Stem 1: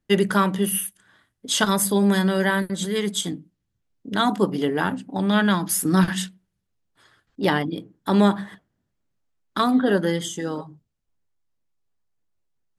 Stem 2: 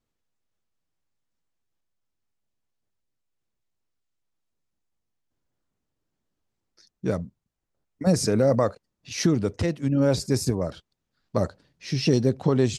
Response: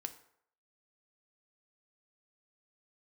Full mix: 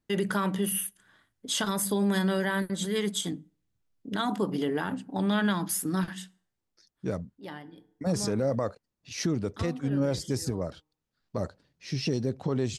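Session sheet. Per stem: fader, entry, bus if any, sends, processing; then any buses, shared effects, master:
-5.0 dB, 0.00 s, send -17.5 dB, auto duck -24 dB, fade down 1.15 s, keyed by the second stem
-5.0 dB, 0.00 s, no send, dry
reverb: on, RT60 0.65 s, pre-delay 3 ms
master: limiter -18.5 dBFS, peak gain reduction 8.5 dB

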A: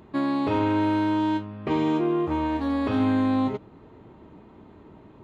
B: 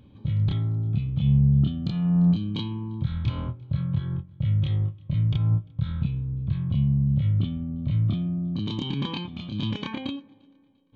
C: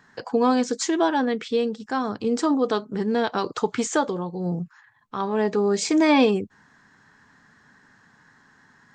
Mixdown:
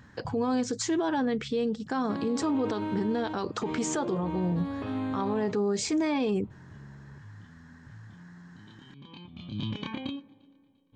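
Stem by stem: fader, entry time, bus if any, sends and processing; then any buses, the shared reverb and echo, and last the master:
-9.5 dB, 1.95 s, no send, dry
-2.5 dB, 0.00 s, no send, compressor 2.5:1, threshold -27 dBFS, peak gain reduction 8 dB; auto duck -18 dB, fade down 0.70 s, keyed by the third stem
-2.5 dB, 0.00 s, no send, low shelf 320 Hz +5.5 dB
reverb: off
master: limiter -21 dBFS, peak gain reduction 12.5 dB

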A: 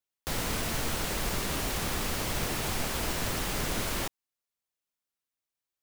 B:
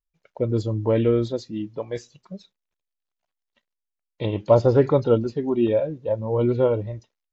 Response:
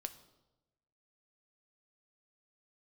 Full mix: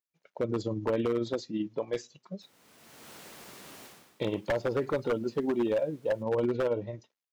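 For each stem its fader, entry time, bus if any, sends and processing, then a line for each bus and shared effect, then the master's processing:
-15.5 dB, 2.15 s, no send, auto duck -18 dB, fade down 0.35 s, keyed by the second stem
0.0 dB, 0.00 s, no send, compressor 10:1, threshold -21 dBFS, peak gain reduction 11.5 dB; tremolo 18 Hz, depth 35%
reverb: off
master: HPF 180 Hz 12 dB/oct; wavefolder -21 dBFS

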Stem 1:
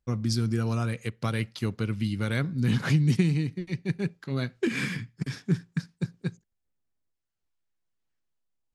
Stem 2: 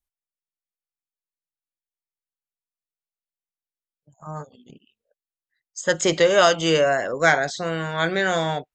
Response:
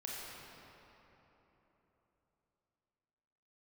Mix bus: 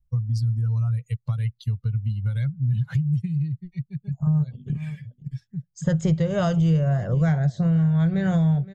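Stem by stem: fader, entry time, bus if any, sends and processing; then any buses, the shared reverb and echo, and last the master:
+2.0 dB, 0.05 s, no send, no echo send, per-bin expansion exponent 2; compressor 4:1, threshold -40 dBFS, peak gain reduction 16.5 dB; auto duck -7 dB, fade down 0.50 s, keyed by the second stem
-0.5 dB, 0.00 s, no send, echo send -20 dB, tilt shelf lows +9.5 dB, about 630 Hz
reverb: off
echo: echo 0.518 s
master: resonant low shelf 200 Hz +13 dB, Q 3; compressor 5:1, threshold -19 dBFS, peak gain reduction 13.5 dB

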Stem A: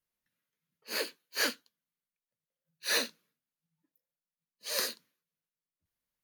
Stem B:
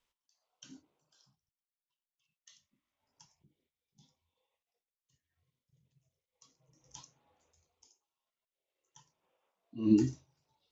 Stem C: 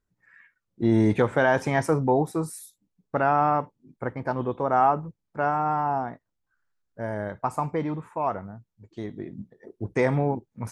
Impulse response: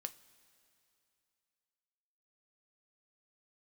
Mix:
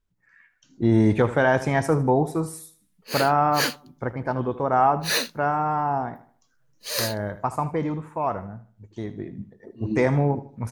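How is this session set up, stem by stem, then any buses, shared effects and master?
+1.5 dB, 2.20 s, no send, no echo send, dry
-8.5 dB, 0.00 s, no send, no echo send, dry
-3.0 dB, 0.00 s, no send, echo send -14.5 dB, dry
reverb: off
echo: feedback echo 77 ms, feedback 35%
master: low shelf 81 Hz +9 dB; AGC gain up to 4 dB

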